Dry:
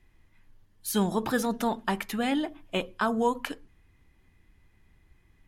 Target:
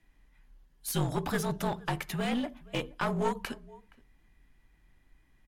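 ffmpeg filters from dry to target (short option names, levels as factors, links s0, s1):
-filter_complex "[0:a]asplit=2[s0][s1];[s1]adelay=472.3,volume=0.0631,highshelf=f=4000:g=-10.6[s2];[s0][s2]amix=inputs=2:normalize=0,afreqshift=-49,aeval=exprs='clip(val(0),-1,0.0398)':c=same,volume=0.794"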